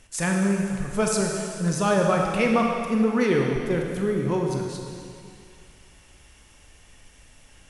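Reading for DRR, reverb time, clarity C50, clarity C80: 0.5 dB, 2.3 s, 1.5 dB, 3.0 dB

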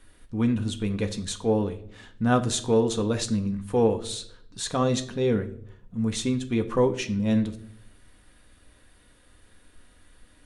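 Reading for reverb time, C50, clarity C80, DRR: 0.65 s, 14.0 dB, 18.0 dB, 6.0 dB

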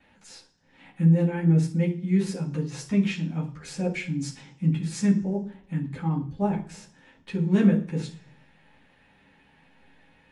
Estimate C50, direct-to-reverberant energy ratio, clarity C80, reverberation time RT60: 11.0 dB, −14.5 dB, 16.0 dB, 0.50 s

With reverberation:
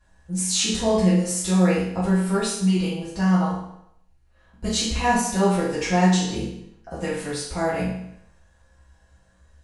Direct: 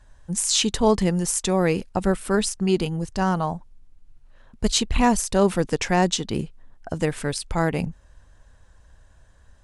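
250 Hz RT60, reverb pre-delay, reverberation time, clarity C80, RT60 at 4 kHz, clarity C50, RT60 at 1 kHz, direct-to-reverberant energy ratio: 0.70 s, 4 ms, 0.75 s, 5.5 dB, 0.70 s, 2.0 dB, 0.75 s, −10.5 dB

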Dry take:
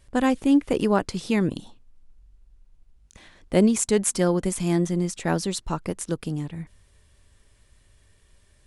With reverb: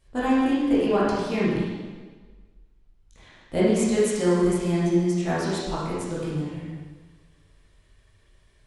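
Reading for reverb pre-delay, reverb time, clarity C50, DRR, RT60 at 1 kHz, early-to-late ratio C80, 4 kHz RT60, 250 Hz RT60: 7 ms, 1.4 s, −2.5 dB, −9.5 dB, 1.4 s, 1.0 dB, 1.3 s, 1.3 s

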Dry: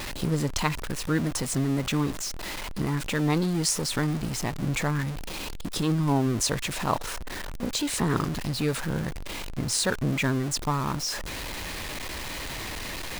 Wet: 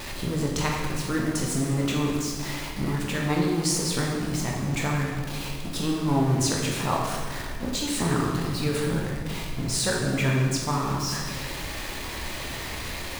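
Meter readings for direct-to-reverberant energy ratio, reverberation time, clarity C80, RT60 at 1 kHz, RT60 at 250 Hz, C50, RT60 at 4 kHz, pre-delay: −2.5 dB, 1.6 s, 3.0 dB, 1.5 s, 1.9 s, 1.5 dB, 1.2 s, 12 ms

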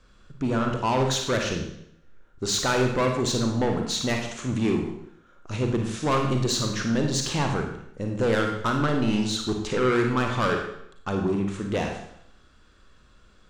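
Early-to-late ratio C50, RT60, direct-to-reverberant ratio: 4.0 dB, 0.70 s, 2.0 dB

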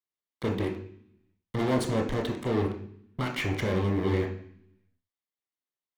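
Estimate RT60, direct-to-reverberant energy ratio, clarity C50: 0.60 s, 0.5 dB, 8.0 dB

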